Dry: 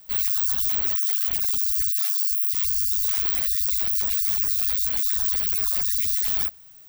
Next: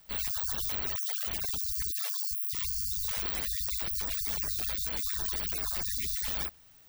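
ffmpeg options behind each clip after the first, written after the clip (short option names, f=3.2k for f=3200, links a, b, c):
-af "highshelf=f=7.4k:g=-9,volume=-1.5dB"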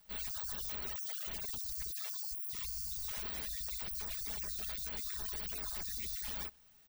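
-af "aecho=1:1:4.8:0.45,asoftclip=type=tanh:threshold=-22dB,volume=-7dB"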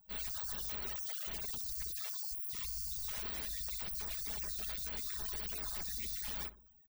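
-filter_complex "[0:a]asplit=2[a][b];[b]adelay=62,lowpass=f=1k:p=1,volume=-11.5dB,asplit=2[c][d];[d]adelay=62,lowpass=f=1k:p=1,volume=0.51,asplit=2[e][f];[f]adelay=62,lowpass=f=1k:p=1,volume=0.51,asplit=2[g][h];[h]adelay=62,lowpass=f=1k:p=1,volume=0.51,asplit=2[i][j];[j]adelay=62,lowpass=f=1k:p=1,volume=0.51[k];[a][c][e][g][i][k]amix=inputs=6:normalize=0,afftfilt=real='re*gte(hypot(re,im),0.000631)':imag='im*gte(hypot(re,im),0.000631)':win_size=1024:overlap=0.75"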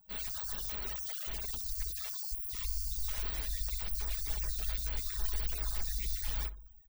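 -af "asubboost=boost=6.5:cutoff=72,volume=1.5dB"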